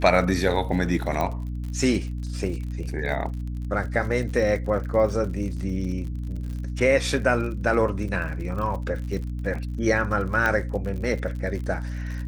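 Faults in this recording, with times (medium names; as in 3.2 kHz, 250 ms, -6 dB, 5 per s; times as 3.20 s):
crackle 63 per s -33 dBFS
hum 60 Hz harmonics 5 -30 dBFS
1.21 s: pop -14 dBFS
10.46 s: pop -11 dBFS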